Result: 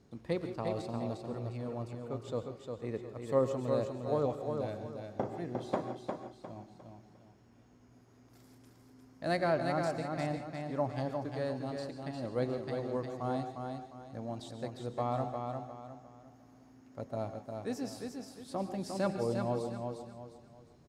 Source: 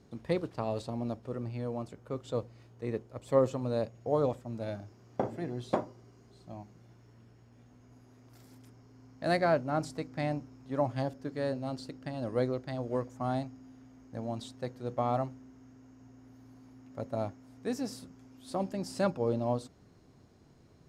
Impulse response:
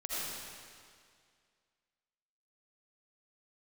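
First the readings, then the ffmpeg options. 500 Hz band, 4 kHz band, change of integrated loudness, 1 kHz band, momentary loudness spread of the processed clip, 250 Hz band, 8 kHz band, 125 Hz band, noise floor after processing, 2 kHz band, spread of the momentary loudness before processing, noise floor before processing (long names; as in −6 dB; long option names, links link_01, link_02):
−2.0 dB, −1.5 dB, −2.5 dB, −1.5 dB, 14 LU, −2.0 dB, −1.5 dB, −2.0 dB, −61 dBFS, −2.0 dB, 15 LU, −60 dBFS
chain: -filter_complex "[0:a]aecho=1:1:354|708|1062|1416:0.562|0.186|0.0612|0.0202,asplit=2[link_01][link_02];[1:a]atrim=start_sample=2205,afade=type=out:start_time=0.15:duration=0.01,atrim=end_sample=7056,asetrate=26019,aresample=44100[link_03];[link_02][link_03]afir=irnorm=-1:irlink=0,volume=-9.5dB[link_04];[link_01][link_04]amix=inputs=2:normalize=0,volume=-5.5dB"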